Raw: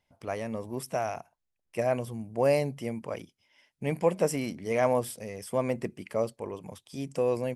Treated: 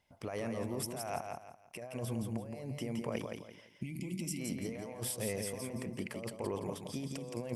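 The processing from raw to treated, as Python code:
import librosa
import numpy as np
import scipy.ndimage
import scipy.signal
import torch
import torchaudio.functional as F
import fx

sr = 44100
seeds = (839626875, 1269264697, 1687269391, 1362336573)

p1 = fx.spec_box(x, sr, start_s=3.69, length_s=0.71, low_hz=370.0, high_hz=2000.0, gain_db=-26)
p2 = fx.over_compress(p1, sr, threshold_db=-37.0, ratio=-1.0)
p3 = fx.cheby_harmonics(p2, sr, harmonics=(2,), levels_db=(-32,), full_scale_db=-17.5)
p4 = p3 + fx.echo_feedback(p3, sr, ms=169, feedback_pct=31, wet_db=-5, dry=0)
y = F.gain(torch.from_numpy(p4), -4.0).numpy()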